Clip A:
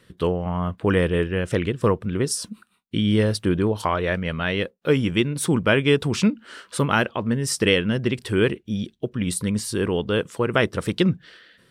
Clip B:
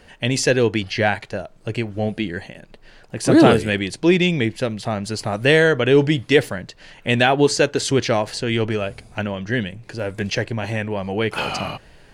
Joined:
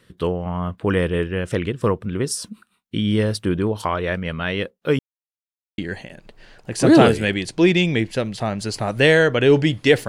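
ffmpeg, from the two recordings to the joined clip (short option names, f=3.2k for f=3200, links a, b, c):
-filter_complex "[0:a]apad=whole_dur=10.08,atrim=end=10.08,asplit=2[a][b];[a]atrim=end=4.99,asetpts=PTS-STARTPTS,afade=t=out:st=4.986:d=0.004:c=hsin[c];[b]atrim=start=4.99:end=5.78,asetpts=PTS-STARTPTS,volume=0[d];[1:a]atrim=start=2.23:end=6.53,asetpts=PTS-STARTPTS,afade=t=in:d=0.004:c=hsin[e];[c][d][e]concat=n=3:v=0:a=1"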